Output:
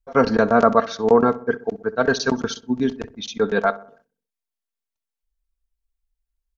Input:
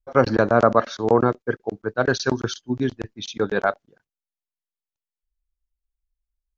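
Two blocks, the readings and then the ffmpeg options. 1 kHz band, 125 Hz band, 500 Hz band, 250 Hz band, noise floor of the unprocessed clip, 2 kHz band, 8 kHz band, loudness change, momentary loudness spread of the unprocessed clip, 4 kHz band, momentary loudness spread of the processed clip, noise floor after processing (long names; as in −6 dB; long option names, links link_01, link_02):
+2.0 dB, −4.5 dB, +1.5 dB, +2.5 dB, below −85 dBFS, +1.0 dB, can't be measured, +1.5 dB, 11 LU, +1.5 dB, 10 LU, below −85 dBFS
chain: -filter_complex "[0:a]aecho=1:1:4.4:0.59,asplit=2[link_01][link_02];[link_02]adelay=64,lowpass=frequency=1400:poles=1,volume=-16dB,asplit=2[link_03][link_04];[link_04]adelay=64,lowpass=frequency=1400:poles=1,volume=0.53,asplit=2[link_05][link_06];[link_06]adelay=64,lowpass=frequency=1400:poles=1,volume=0.53,asplit=2[link_07][link_08];[link_08]adelay=64,lowpass=frequency=1400:poles=1,volume=0.53,asplit=2[link_09][link_10];[link_10]adelay=64,lowpass=frequency=1400:poles=1,volume=0.53[link_11];[link_01][link_03][link_05][link_07][link_09][link_11]amix=inputs=6:normalize=0"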